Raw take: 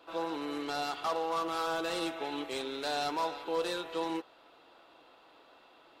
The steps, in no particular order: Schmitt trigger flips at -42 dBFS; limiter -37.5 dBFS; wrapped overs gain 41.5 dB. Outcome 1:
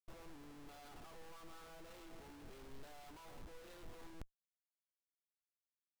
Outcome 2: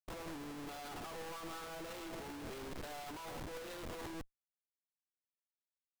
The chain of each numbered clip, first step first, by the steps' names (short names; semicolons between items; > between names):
Schmitt trigger > wrapped overs > limiter; Schmitt trigger > limiter > wrapped overs